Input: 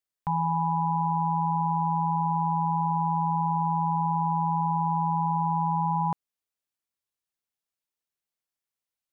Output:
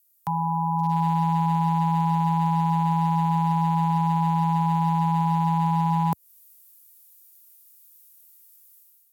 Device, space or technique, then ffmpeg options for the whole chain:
FM broadcast chain: -filter_complex "[0:a]highpass=68,dynaudnorm=f=730:g=3:m=3.55,acrossover=split=84|560[s0][s1][s2];[s0]acompressor=threshold=0.00126:ratio=4[s3];[s1]acompressor=threshold=0.0891:ratio=4[s4];[s2]acompressor=threshold=0.0447:ratio=4[s5];[s3][s4][s5]amix=inputs=3:normalize=0,aemphasis=mode=production:type=50fm,alimiter=limit=0.158:level=0:latency=1:release=184,asoftclip=type=hard:threshold=0.133,lowpass=f=15000:w=0.5412,lowpass=f=15000:w=1.3066,aemphasis=mode=production:type=50fm,volume=1.19"

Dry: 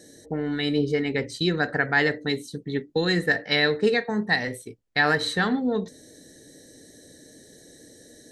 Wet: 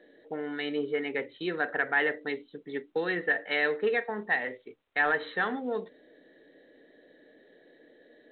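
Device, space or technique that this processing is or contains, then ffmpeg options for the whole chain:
telephone: -af "highpass=400,lowpass=3300,asoftclip=type=tanh:threshold=0.224,volume=0.75" -ar 8000 -c:a pcm_mulaw

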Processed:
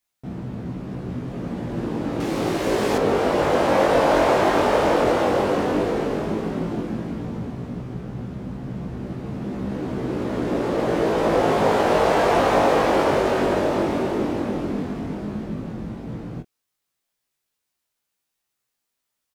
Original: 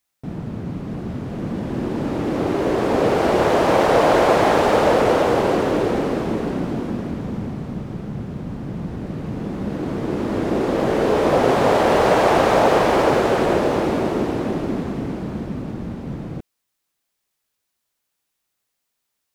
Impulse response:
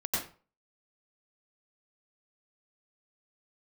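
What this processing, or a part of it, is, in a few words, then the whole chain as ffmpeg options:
double-tracked vocal: -filter_complex "[0:a]asplit=2[s0][s1];[s1]adelay=24,volume=0.316[s2];[s0][s2]amix=inputs=2:normalize=0,flanger=delay=15.5:depth=5.3:speed=0.11,asettb=1/sr,asplit=3[s3][s4][s5];[s3]atrim=end=2.204[s6];[s4]atrim=start=2.2:end=2.98,asetpts=PTS-STARTPTS,afade=t=in:d=0.004:c=qsin,afade=t=out:st=0.776:d=0.004:c=qsin,highshelf=f=2800:g=11.5[s7];[s5]atrim=start=2.976[s8];[s6][s7]acrossfade=d=0.004:c1=hsin:c2=qsin[s9];[s9][s8]acrossfade=d=0.004:c1=qsin:c2=hsin"

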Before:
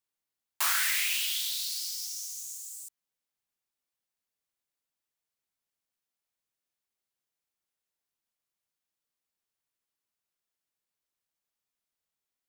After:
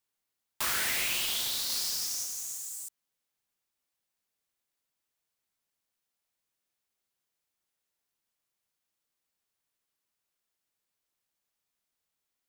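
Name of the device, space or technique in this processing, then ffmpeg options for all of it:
saturation between pre-emphasis and de-emphasis: -filter_complex "[0:a]highshelf=f=6200:g=11,asoftclip=type=tanh:threshold=0.0668,highshelf=f=6200:g=-11,asettb=1/sr,asplit=3[s0][s1][s2];[s0]atrim=end=1.664[s3];[s1]atrim=start=1.66:end=2.24,asetpts=PTS-STARTPTS,afade=t=in:d=0.004:c=qsin,afade=t=out:st=0.576:d=0.004:c=qsin,asplit=2[s4][s5];[s5]adelay=35,volume=0.708[s6];[s4][s6]amix=inputs=2:normalize=0,atrim=end_sample=25578[s7];[s2]atrim=start=2.236[s8];[s3][s7]acrossfade=d=0.004:c1=hsin:c2=qsin[s9];[s9][s8]acrossfade=d=0.004:c1=qsin:c2=hsin,volume=1.5"

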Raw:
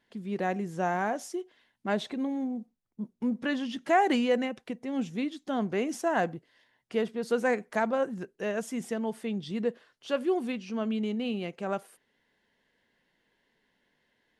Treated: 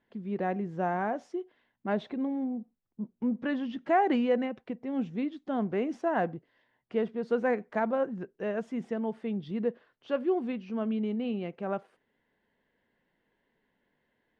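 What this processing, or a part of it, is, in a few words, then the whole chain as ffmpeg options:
phone in a pocket: -af "lowpass=3700,highshelf=f=2100:g=-9.5"

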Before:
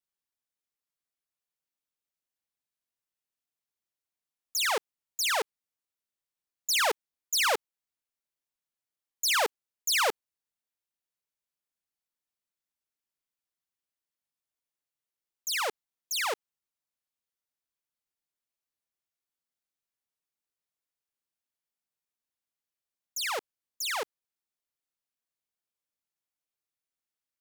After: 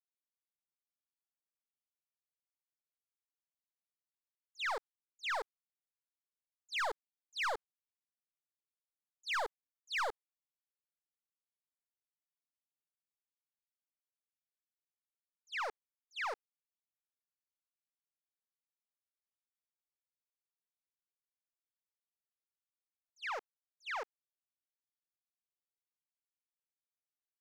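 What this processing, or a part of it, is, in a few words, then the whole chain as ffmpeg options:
walkie-talkie: -af "highpass=550,lowpass=2300,asoftclip=type=hard:threshold=0.0422,agate=range=0.2:threshold=0.00794:ratio=16:detection=peak,volume=0.596"

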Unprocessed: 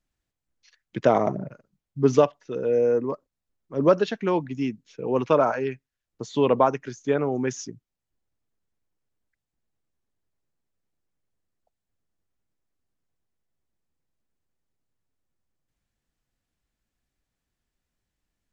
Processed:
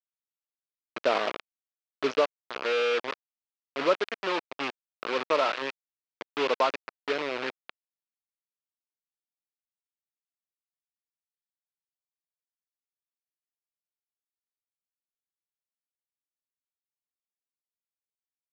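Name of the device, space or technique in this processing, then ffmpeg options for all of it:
hand-held game console: -af "acrusher=bits=3:mix=0:aa=0.000001,highpass=440,equalizer=f=770:t=q:w=4:g=-4,equalizer=f=1300:t=q:w=4:g=3,equalizer=f=2500:t=q:w=4:g=4,lowpass=f=4500:w=0.5412,lowpass=f=4500:w=1.3066,volume=0.631"

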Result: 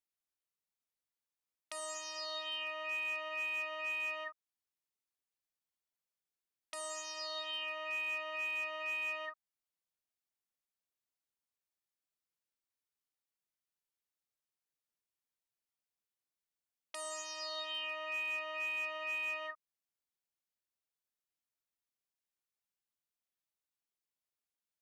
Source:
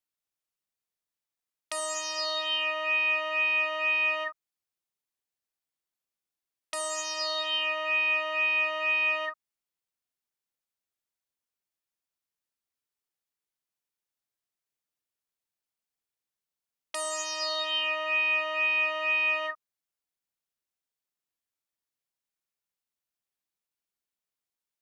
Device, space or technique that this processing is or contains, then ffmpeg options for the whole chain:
clipper into limiter: -af "asoftclip=type=hard:threshold=0.0891,alimiter=level_in=1.41:limit=0.0631:level=0:latency=1:release=375,volume=0.708,volume=0.531"

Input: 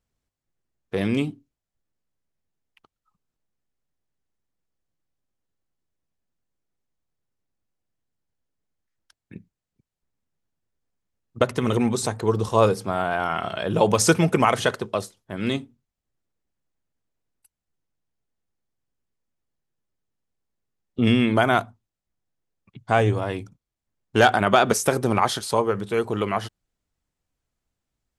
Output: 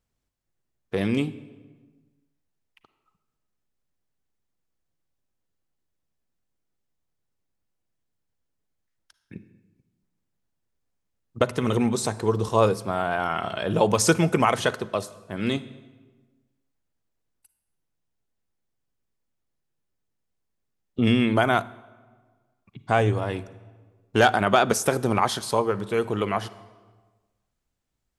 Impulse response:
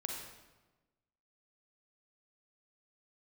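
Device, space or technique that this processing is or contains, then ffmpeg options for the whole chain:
ducked reverb: -filter_complex "[0:a]asplit=3[s0][s1][s2];[1:a]atrim=start_sample=2205[s3];[s1][s3]afir=irnorm=-1:irlink=0[s4];[s2]apad=whole_len=1242777[s5];[s4][s5]sidechaincompress=threshold=0.0794:ratio=8:attack=8.9:release=1160,volume=0.501[s6];[s0][s6]amix=inputs=2:normalize=0,volume=0.75"

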